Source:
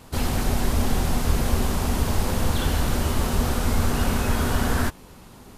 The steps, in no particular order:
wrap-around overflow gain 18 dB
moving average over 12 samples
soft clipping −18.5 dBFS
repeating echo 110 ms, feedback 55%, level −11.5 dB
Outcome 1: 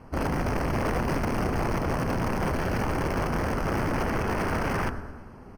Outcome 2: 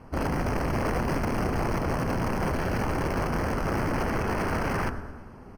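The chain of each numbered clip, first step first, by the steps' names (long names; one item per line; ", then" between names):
repeating echo, then wrap-around overflow, then moving average, then soft clipping
repeating echo, then wrap-around overflow, then soft clipping, then moving average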